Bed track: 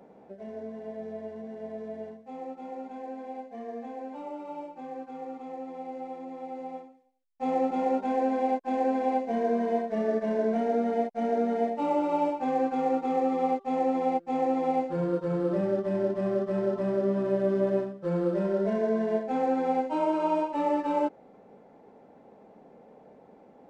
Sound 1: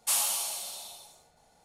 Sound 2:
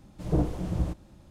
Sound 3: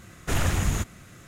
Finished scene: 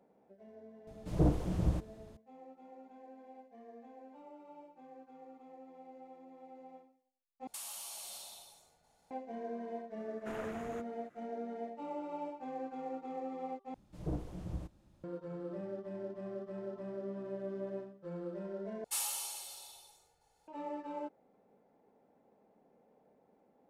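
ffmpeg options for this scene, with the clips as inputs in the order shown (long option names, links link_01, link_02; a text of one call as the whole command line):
ffmpeg -i bed.wav -i cue0.wav -i cue1.wav -i cue2.wav -filter_complex "[2:a]asplit=2[link_01][link_02];[1:a]asplit=2[link_03][link_04];[0:a]volume=-15dB[link_05];[link_03]acompressor=threshold=-34dB:ratio=6:attack=3.2:release=140:knee=1:detection=peak[link_06];[3:a]acrossover=split=210 2200:gain=0.1 1 0.158[link_07][link_08][link_09];[link_07][link_08][link_09]amix=inputs=3:normalize=0[link_10];[link_04]aecho=1:1:2.3:0.56[link_11];[link_05]asplit=4[link_12][link_13][link_14][link_15];[link_12]atrim=end=7.474[link_16];[link_06]atrim=end=1.64,asetpts=PTS-STARTPTS,volume=-7.5dB[link_17];[link_13]atrim=start=9.106:end=13.744[link_18];[link_02]atrim=end=1.3,asetpts=PTS-STARTPTS,volume=-12.5dB[link_19];[link_14]atrim=start=15.036:end=18.844[link_20];[link_11]atrim=end=1.64,asetpts=PTS-STARTPTS,volume=-10.5dB[link_21];[link_15]atrim=start=20.476[link_22];[link_01]atrim=end=1.3,asetpts=PTS-STARTPTS,volume=-3dB,afade=type=in:duration=0.004:curve=hsin,afade=type=out:start_time=1.296:duration=0.004:curve=hsin,adelay=870[link_23];[link_10]atrim=end=1.27,asetpts=PTS-STARTPTS,volume=-13.5dB,afade=type=in:duration=0.004:curve=hsin,afade=type=out:start_time=1.266:duration=0.004:curve=hsin,adelay=9980[link_24];[link_16][link_17]acrossfade=duration=0.004:curve1=hsin:curve2=hsin[link_25];[link_25][link_18]acrossfade=duration=0.004:curve1=hsin:curve2=hsin[link_26];[link_26][link_19]acrossfade=duration=0.004:curve1=hsin:curve2=hsin[link_27];[link_27][link_20]acrossfade=duration=0.004:curve1=hsin:curve2=hsin[link_28];[link_28][link_21]acrossfade=duration=0.004:curve1=hsin:curve2=hsin[link_29];[link_29][link_22]acrossfade=duration=0.004:curve1=hsin:curve2=hsin[link_30];[link_30][link_23][link_24]amix=inputs=3:normalize=0" out.wav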